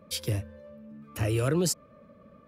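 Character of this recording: noise floor -57 dBFS; spectral tilt -5.0 dB/oct

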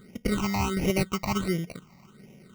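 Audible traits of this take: aliases and images of a low sample rate 1700 Hz, jitter 0%; phasing stages 8, 1.4 Hz, lowest notch 430–1300 Hz

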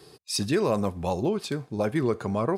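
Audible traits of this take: noise floor -57 dBFS; spectral tilt -5.5 dB/oct

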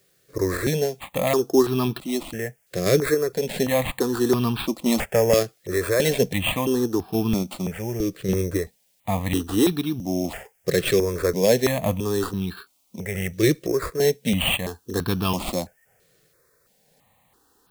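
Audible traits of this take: aliases and images of a low sample rate 5900 Hz, jitter 0%; random-step tremolo 3.5 Hz; a quantiser's noise floor 12-bit, dither triangular; notches that jump at a steady rate 3 Hz 240–2000 Hz

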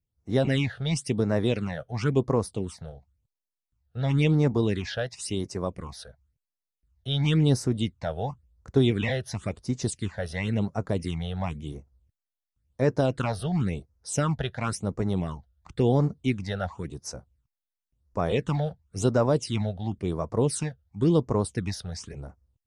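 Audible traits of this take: phasing stages 8, 0.95 Hz, lowest notch 290–3200 Hz

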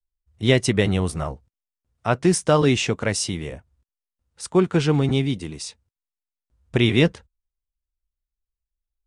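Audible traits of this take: noise floor -89 dBFS; spectral tilt -5.5 dB/oct

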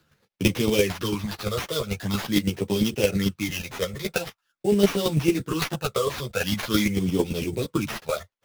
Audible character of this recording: chopped level 8.9 Hz, depth 60%, duty 10%; phasing stages 12, 0.45 Hz, lowest notch 260–1600 Hz; aliases and images of a low sample rate 8500 Hz, jitter 20%; a shimmering, thickened sound

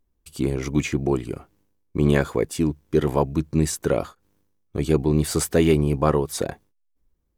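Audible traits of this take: noise floor -69 dBFS; spectral tilt -5.5 dB/oct

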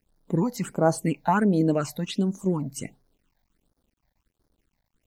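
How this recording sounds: a quantiser's noise floor 12-bit, dither none; phasing stages 8, 1.4 Hz, lowest notch 360–2700 Hz

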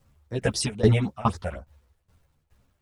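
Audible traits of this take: phasing stages 6, 3.9 Hz, lowest notch 280–2800 Hz; a quantiser's noise floor 12-bit, dither none; tremolo saw down 2.4 Hz, depth 90%; a shimmering, thickened sound

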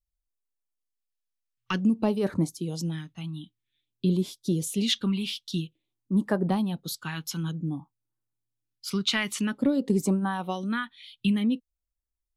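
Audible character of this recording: phasing stages 2, 0.52 Hz, lowest notch 520–2700 Hz

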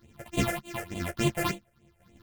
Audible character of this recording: a buzz of ramps at a fixed pitch in blocks of 128 samples; phasing stages 6, 3.4 Hz, lowest notch 260–1500 Hz; chopped level 1 Hz, depth 60%, duty 50%; a shimmering, thickened sound

